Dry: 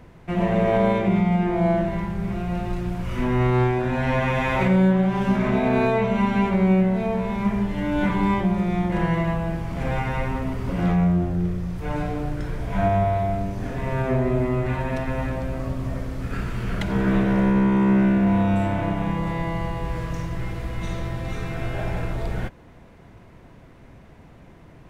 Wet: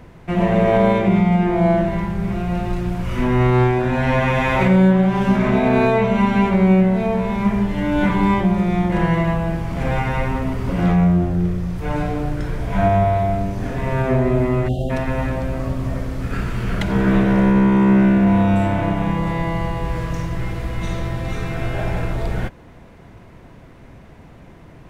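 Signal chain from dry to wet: spectral delete 14.68–14.9, 810–2700 Hz; gain +4.5 dB

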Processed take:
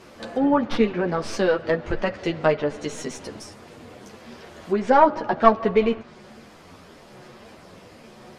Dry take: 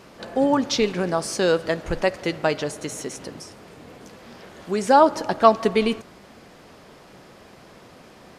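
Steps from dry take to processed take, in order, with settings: tracing distortion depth 0.067 ms; chorus voices 4, 0.5 Hz, delay 11 ms, depth 2.8 ms; treble ducked by the level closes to 2300 Hz, closed at -22.5 dBFS; gain +3.5 dB

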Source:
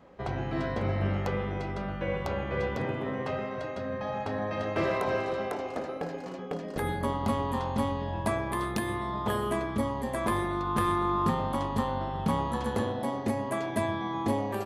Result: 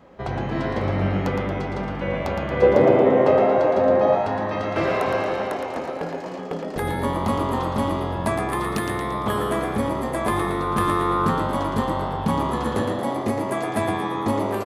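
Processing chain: 2.62–4.15 bell 450 Hz +14 dB 1.8 oct; frequency-shifting echo 0.114 s, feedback 51%, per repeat +89 Hz, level -6 dB; gain +5 dB

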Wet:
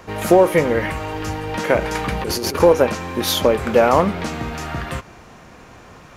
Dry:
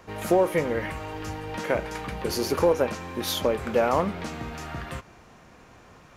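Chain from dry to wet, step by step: 1.81–2.6 negative-ratio compressor -31 dBFS, ratio -1; gain +8.5 dB

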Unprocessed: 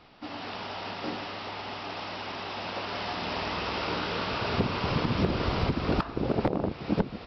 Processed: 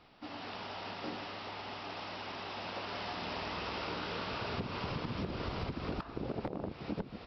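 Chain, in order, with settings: compressor, threshold -28 dBFS, peak gain reduction 8 dB; gain -6 dB

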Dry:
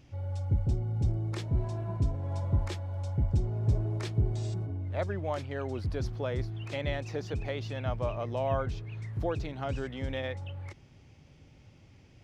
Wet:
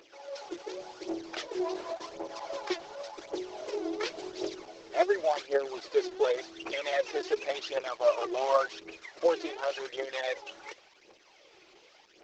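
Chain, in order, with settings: CVSD 32 kbps; phaser 0.9 Hz, delay 3 ms, feedback 71%; brick-wall FIR high-pass 310 Hz; gain +4 dB; Opus 10 kbps 48000 Hz

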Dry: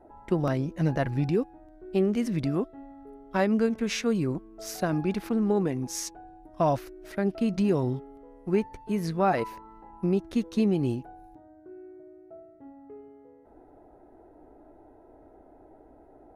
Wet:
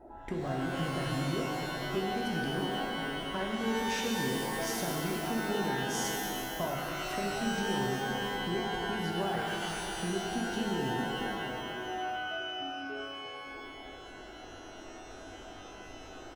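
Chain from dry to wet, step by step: compressor 4:1, threshold -37 dBFS, peak gain reduction 15.5 dB; outdoor echo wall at 110 m, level -10 dB; shimmer reverb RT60 2.3 s, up +12 st, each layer -2 dB, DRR -1 dB

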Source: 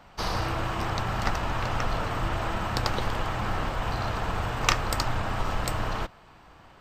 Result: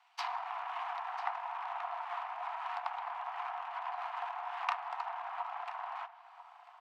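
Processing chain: treble ducked by the level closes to 970 Hz, closed at -24 dBFS; power-law curve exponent 1.4; rippled Chebyshev high-pass 690 Hz, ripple 6 dB; on a send: echo 0.995 s -15 dB; on the sum: gain +4.5 dB

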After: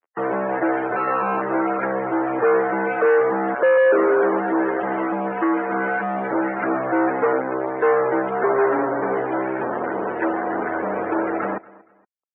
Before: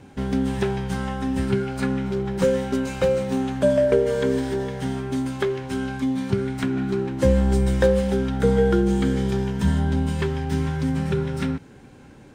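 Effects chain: 0.96–1.42 sample sorter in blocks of 32 samples; 3.54–3.98 fixed phaser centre 1400 Hz, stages 8; 6.63–7.33 comb 5.3 ms, depth 94%; fuzz box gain 39 dB, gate -36 dBFS; loudest bins only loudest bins 64; feedback echo 0.234 s, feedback 32%, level -22 dB; mistuned SSB -66 Hz 420–2100 Hz

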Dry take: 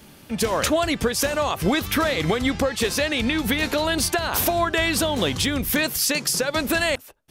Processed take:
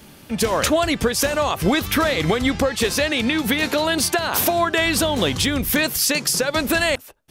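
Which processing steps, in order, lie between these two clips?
3.12–4.85 HPF 110 Hz 12 dB/oct; gain +2.5 dB

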